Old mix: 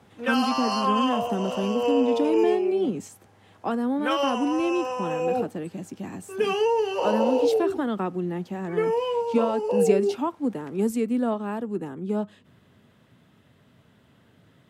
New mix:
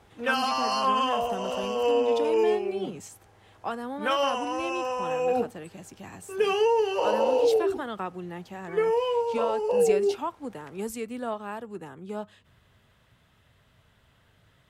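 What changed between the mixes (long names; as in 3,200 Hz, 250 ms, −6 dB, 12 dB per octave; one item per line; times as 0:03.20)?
speech: add parametric band 250 Hz −12.5 dB 1.9 octaves
master: remove high-pass filter 97 Hz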